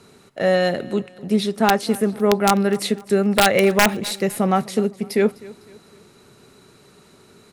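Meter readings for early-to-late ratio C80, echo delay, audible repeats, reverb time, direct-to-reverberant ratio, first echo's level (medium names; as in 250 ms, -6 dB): no reverb, 253 ms, 2, no reverb, no reverb, -21.0 dB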